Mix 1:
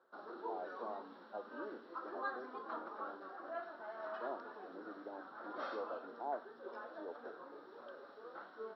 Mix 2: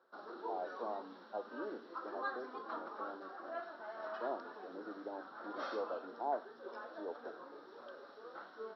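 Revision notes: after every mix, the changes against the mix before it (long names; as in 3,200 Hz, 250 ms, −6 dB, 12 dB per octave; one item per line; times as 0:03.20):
speech +3.5 dB
master: remove high-frequency loss of the air 140 metres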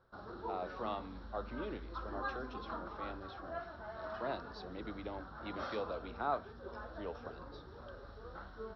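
speech: remove Butterworth low-pass 1,000 Hz 96 dB per octave
master: remove high-pass filter 280 Hz 24 dB per octave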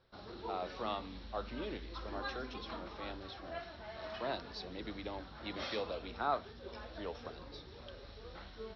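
speech: add high-shelf EQ 2,500 Hz +10.5 dB
background: add high shelf with overshoot 1,800 Hz +8 dB, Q 3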